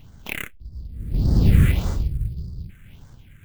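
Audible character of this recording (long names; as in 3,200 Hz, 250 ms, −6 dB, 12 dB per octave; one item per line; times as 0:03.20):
aliases and images of a low sample rate 4,800 Hz, jitter 20%
phaser sweep stages 4, 1.7 Hz, lowest notch 800–2,500 Hz
sample-and-hold tremolo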